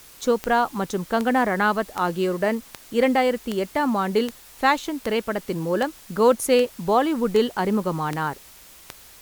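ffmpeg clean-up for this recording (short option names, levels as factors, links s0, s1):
-af "adeclick=t=4,afftdn=nr=20:nf=-47"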